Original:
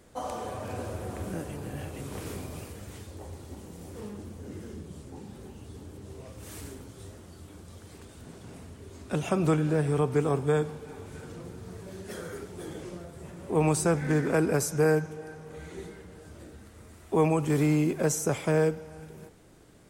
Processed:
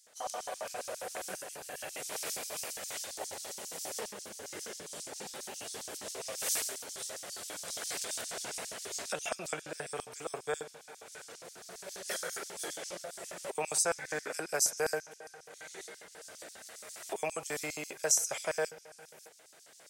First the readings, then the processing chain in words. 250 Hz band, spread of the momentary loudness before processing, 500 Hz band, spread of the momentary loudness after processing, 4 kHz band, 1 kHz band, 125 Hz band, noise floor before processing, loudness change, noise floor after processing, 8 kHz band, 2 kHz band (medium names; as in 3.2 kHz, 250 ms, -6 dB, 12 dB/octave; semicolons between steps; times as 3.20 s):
-21.0 dB, 22 LU, -9.5 dB, 18 LU, +6.5 dB, -5.5 dB, -26.0 dB, -51 dBFS, -8.0 dB, -57 dBFS, +5.5 dB, -1.5 dB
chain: recorder AGC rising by 5.6 dB/s; high-order bell 530 Hz -9 dB 2.6 oct; LFO high-pass square 7.4 Hz 620–5500 Hz